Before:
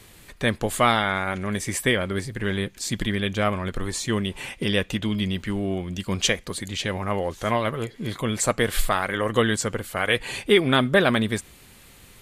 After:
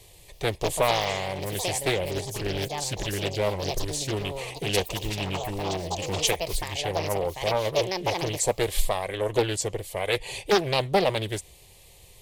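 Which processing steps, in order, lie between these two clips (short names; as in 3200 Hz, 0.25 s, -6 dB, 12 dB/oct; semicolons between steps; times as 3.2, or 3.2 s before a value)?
echoes that change speed 0.329 s, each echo +6 st, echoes 2, each echo -6 dB; fixed phaser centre 590 Hz, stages 4; Doppler distortion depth 0.64 ms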